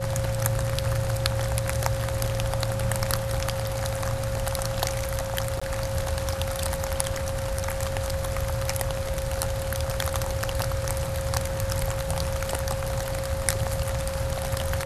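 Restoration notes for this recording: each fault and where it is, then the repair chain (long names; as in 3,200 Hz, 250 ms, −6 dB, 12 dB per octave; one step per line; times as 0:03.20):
whistle 540 Hz −31 dBFS
0:05.60–0:05.62: drop-out 15 ms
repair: notch filter 540 Hz, Q 30
repair the gap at 0:05.60, 15 ms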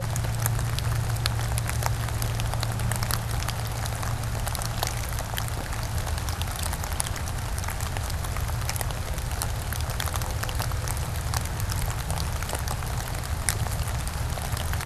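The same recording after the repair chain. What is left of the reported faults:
none of them is left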